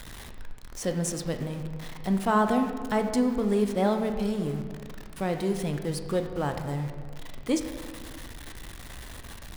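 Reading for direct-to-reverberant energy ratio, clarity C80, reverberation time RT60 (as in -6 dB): 5.5 dB, 9.0 dB, 1.9 s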